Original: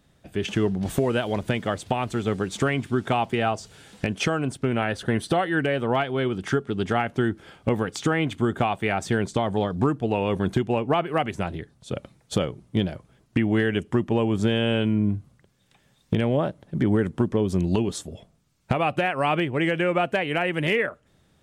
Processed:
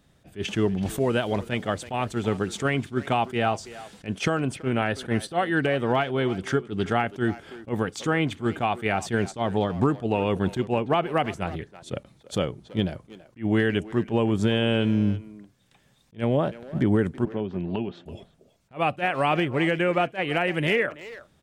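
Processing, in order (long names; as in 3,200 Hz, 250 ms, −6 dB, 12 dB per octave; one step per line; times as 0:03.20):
0:17.25–0:18.06: loudspeaker in its box 170–2,800 Hz, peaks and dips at 190 Hz −4 dB, 300 Hz −8 dB, 470 Hz −8 dB, 1,100 Hz −8 dB, 2,000 Hz −5 dB
far-end echo of a speakerphone 330 ms, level −15 dB
level that may rise only so fast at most 310 dB per second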